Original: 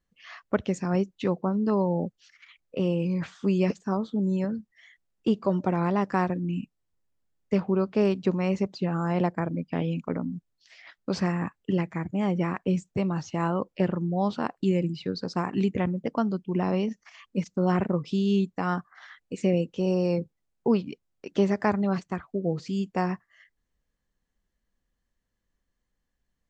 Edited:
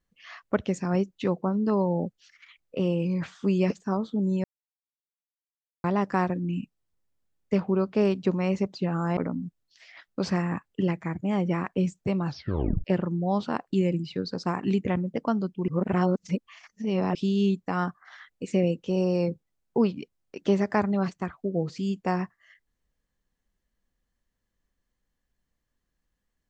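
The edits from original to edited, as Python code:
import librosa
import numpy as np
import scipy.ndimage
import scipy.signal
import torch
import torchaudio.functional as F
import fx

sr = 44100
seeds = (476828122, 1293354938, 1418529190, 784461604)

y = fx.edit(x, sr, fx.silence(start_s=4.44, length_s=1.4),
    fx.cut(start_s=9.17, length_s=0.9),
    fx.tape_stop(start_s=13.17, length_s=0.57),
    fx.reverse_span(start_s=16.58, length_s=1.47), tone=tone)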